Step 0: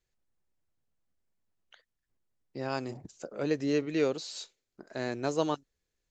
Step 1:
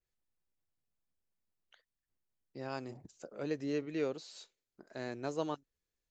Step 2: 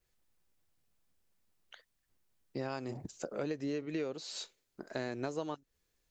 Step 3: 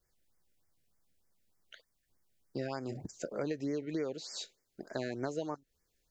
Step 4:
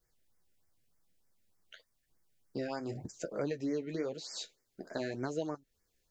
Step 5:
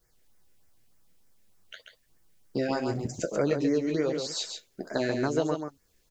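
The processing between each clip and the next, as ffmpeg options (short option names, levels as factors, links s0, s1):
-af "adynamicequalizer=threshold=0.00316:dfrequency=3000:dqfactor=0.7:tfrequency=3000:tqfactor=0.7:attack=5:release=100:ratio=0.375:range=2.5:mode=cutabove:tftype=highshelf,volume=0.447"
-af "acompressor=threshold=0.00708:ratio=12,volume=3.16"
-af "afftfilt=real='re*(1-between(b*sr/1024,930*pow(3400/930,0.5+0.5*sin(2*PI*3.3*pts/sr))/1.41,930*pow(3400/930,0.5+0.5*sin(2*PI*3.3*pts/sr))*1.41))':imag='im*(1-between(b*sr/1024,930*pow(3400/930,0.5+0.5*sin(2*PI*3.3*pts/sr))/1.41,930*pow(3400/930,0.5+0.5*sin(2*PI*3.3*pts/sr))*1.41))':win_size=1024:overlap=0.75,volume=1.12"
-af "flanger=delay=6.1:depth=5.4:regen=-38:speed=0.91:shape=sinusoidal,volume=1.58"
-af "aecho=1:1:136:0.501,volume=2.66"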